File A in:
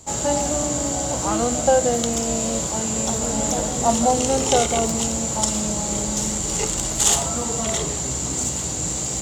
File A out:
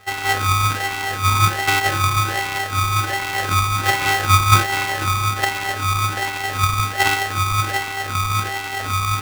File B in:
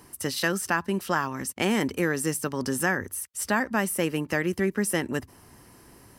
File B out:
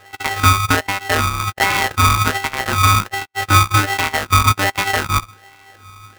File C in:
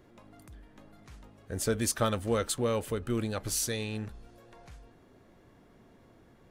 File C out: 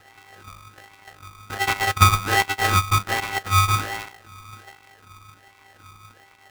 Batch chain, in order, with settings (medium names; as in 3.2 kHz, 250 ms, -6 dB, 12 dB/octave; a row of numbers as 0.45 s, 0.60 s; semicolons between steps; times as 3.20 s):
sorted samples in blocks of 64 samples; wah-wah 1.3 Hz 610–1700 Hz, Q 5.3; polarity switched at an audio rate 590 Hz; peak normalisation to -2 dBFS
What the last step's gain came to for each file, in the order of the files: +12.0 dB, +20.0 dB, +20.0 dB